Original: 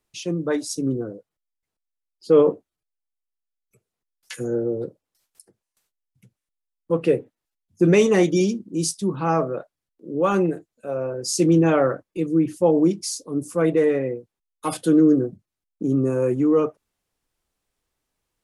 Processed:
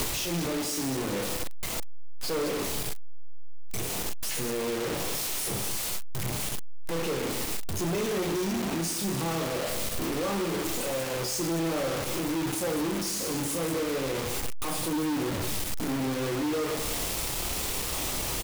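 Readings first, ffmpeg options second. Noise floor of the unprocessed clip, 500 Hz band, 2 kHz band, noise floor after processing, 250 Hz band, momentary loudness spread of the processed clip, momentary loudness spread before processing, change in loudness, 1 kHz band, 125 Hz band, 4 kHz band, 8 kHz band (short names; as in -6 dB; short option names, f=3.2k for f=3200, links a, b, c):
under -85 dBFS, -10.0 dB, -0.5 dB, -32 dBFS, -9.5 dB, 4 LU, 14 LU, -8.5 dB, -4.5 dB, -7.0 dB, +4.5 dB, +3.0 dB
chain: -filter_complex "[0:a]aeval=exprs='val(0)+0.5*0.0891*sgn(val(0))':c=same,equalizer=f=1.6k:w=3.8:g=-9.5,asplit=2[a][b];[b]aecho=0:1:30|64.5|104.2|149.8|202.3:0.631|0.398|0.251|0.158|0.1[c];[a][c]amix=inputs=2:normalize=0,asoftclip=type=hard:threshold=-12.5dB,alimiter=limit=-23dB:level=0:latency=1:release=25,asplit=2[d][e];[e]aecho=0:1:188|376|564:0.282|0.0789|0.0221[f];[d][f]amix=inputs=2:normalize=0,acrusher=bits=4:mix=0:aa=0.000001,volume=-3dB"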